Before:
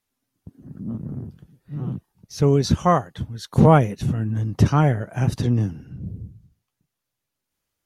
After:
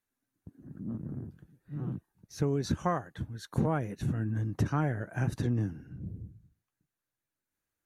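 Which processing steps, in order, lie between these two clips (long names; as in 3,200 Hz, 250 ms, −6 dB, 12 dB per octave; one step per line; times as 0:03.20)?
thirty-one-band graphic EQ 315 Hz +5 dB, 1,600 Hz +7 dB, 3,150 Hz −5 dB, 5,000 Hz −6 dB
downward compressor 12 to 1, threshold −16 dBFS, peak gain reduction 10 dB
level −8 dB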